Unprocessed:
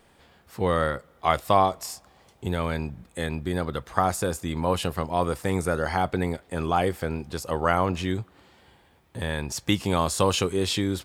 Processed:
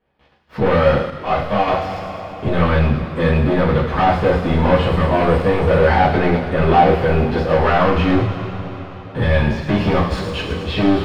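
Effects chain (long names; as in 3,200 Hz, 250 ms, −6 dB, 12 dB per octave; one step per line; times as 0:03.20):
one-sided soft clipper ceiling −11 dBFS
de-essing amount 95%
0:04.80–0:05.36: parametric band 8,000 Hz +11 dB 0.38 octaves
leveller curve on the samples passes 5
0:09.99–0:10.67: compressor whose output falls as the input rises −22 dBFS, ratio −0.5
high-frequency loss of the air 340 metres
delay with a high-pass on its return 109 ms, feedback 66%, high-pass 5,100 Hz, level −3.5 dB
coupled-rooms reverb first 0.36 s, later 4.4 s, from −18 dB, DRR −9 dB
0:01.10–0:01.68: micro pitch shift up and down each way 20 cents
level −7 dB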